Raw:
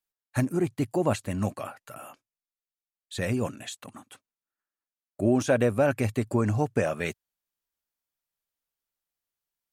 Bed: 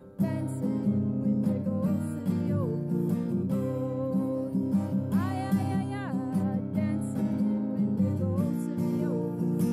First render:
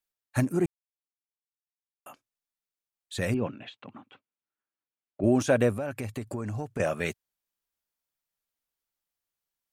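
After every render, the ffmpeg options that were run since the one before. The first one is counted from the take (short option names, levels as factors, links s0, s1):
-filter_complex "[0:a]asettb=1/sr,asplit=3[s0][s1][s2];[s0]atrim=end=3.344[s3];[s1]atrim=start=3.34:end=5.24,asetpts=PTS-STARTPTS,afade=t=in:d=0.004:c=qsin,afade=t=out:st=1.896:d=0.004:c=qsin,highpass=110,equalizer=f=670:t=q:w=4:g=-3,equalizer=f=1200:t=q:w=4:g=-3,equalizer=f=1800:t=q:w=4:g=-5,lowpass=f=3100:w=0.5412,lowpass=f=3100:w=1.3066[s4];[s2]atrim=start=5.236[s5];[s3][s4]acrossfade=d=0.004:c1=hsin:c2=qsin[s6];[s6][s5]acrossfade=d=0.004:c1=qsin:c2=hsin,asettb=1/sr,asplit=3[s7][s8][s9];[s7]atrim=end=5.764[s10];[s8]atrim=start=5.76:end=6.8,asetpts=PTS-STARTPTS,afade=t=in:d=0.004:c=qsin,afade=t=out:st=1.036:d=0.004:c=qsin,acompressor=threshold=0.0251:ratio=3:attack=3.2:release=140:knee=1:detection=peak[s11];[s9]atrim=start=6.796[s12];[s10][s11]acrossfade=d=0.004:c1=hsin:c2=qsin[s13];[s13][s12]acrossfade=d=0.004:c1=qsin:c2=hsin,asplit=3[s14][s15][s16];[s14]atrim=end=0.66,asetpts=PTS-STARTPTS,afade=t=out:st=0.656:d=0.004:c=hsin[s17];[s15]atrim=start=0.66:end=2.06,asetpts=PTS-STARTPTS,volume=0[s18];[s16]atrim=start=2.06,asetpts=PTS-STARTPTS,afade=t=in:d=0.004:c=hsin[s19];[s17][s18][s19]concat=n=3:v=0:a=1"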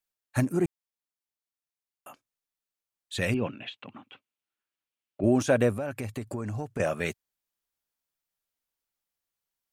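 -filter_complex "[0:a]asettb=1/sr,asplit=3[s0][s1][s2];[s0]atrim=end=3.134[s3];[s1]atrim=start=3.13:end=5.23,asetpts=PTS-STARTPTS,afade=t=in:d=0.004:c=qsin,afade=t=out:st=2.096:d=0.004:c=qsin,equalizer=f=2800:w=1.5:g=7[s4];[s2]atrim=start=5.226[s5];[s3][s4]acrossfade=d=0.004:c1=hsin:c2=qsin[s6];[s6][s5]acrossfade=d=0.004:c1=qsin:c2=hsin"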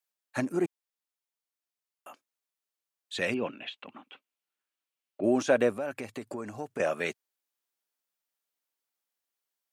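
-filter_complex "[0:a]acrossover=split=7300[s0][s1];[s1]acompressor=threshold=0.00112:ratio=4:attack=1:release=60[s2];[s0][s2]amix=inputs=2:normalize=0,highpass=270"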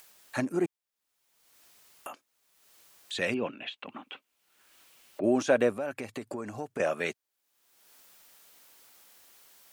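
-af "acompressor=mode=upward:threshold=0.02:ratio=2.5"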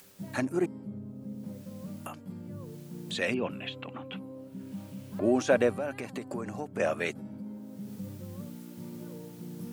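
-filter_complex "[1:a]volume=0.2[s0];[0:a][s0]amix=inputs=2:normalize=0"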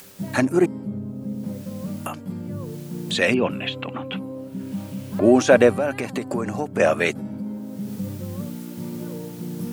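-af "volume=3.35,alimiter=limit=0.794:level=0:latency=1"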